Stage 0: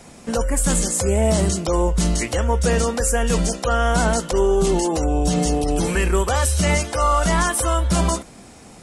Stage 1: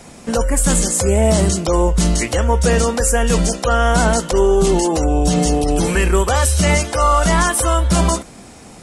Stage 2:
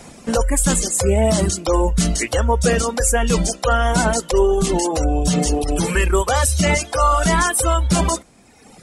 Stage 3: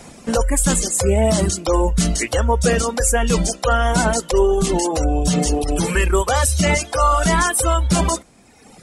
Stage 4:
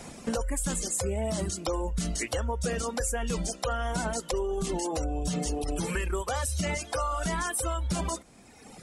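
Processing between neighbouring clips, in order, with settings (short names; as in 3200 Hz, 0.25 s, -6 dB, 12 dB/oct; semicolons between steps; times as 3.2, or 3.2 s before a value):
resonator 310 Hz, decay 1.1 s, mix 30%; gain +7 dB
reverb removal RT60 1.3 s
nothing audible
compressor 6:1, threshold -24 dBFS, peak gain reduction 12.5 dB; gain -3.5 dB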